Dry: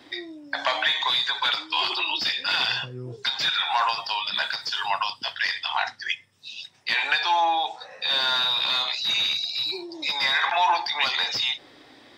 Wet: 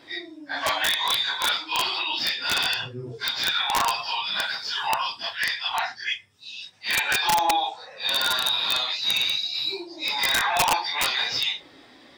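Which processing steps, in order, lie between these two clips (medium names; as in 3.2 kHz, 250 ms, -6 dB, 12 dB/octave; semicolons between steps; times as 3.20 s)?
phase randomisation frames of 100 ms; integer overflow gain 14 dB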